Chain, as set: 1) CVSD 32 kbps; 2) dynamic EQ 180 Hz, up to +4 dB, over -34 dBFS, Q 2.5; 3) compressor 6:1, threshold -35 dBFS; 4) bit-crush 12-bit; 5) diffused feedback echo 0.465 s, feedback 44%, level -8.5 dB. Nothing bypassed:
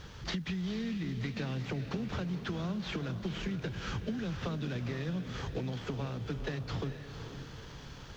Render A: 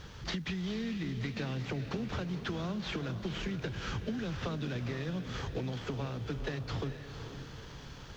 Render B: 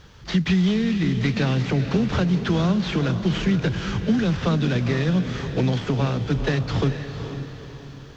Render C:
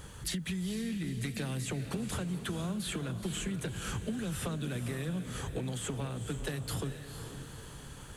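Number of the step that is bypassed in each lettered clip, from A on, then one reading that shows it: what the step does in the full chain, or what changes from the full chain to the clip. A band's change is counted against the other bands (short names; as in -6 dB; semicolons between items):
2, 250 Hz band -1.5 dB; 3, mean gain reduction 11.0 dB; 1, 4 kHz band +2.0 dB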